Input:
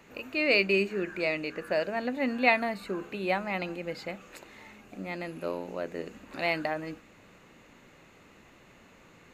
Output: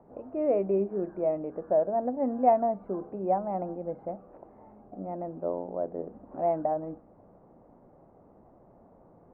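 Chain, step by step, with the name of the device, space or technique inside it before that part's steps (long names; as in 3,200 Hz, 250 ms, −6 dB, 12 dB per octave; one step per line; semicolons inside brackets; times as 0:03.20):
under water (low-pass filter 900 Hz 24 dB per octave; parametric band 700 Hz +7 dB 0.58 octaves)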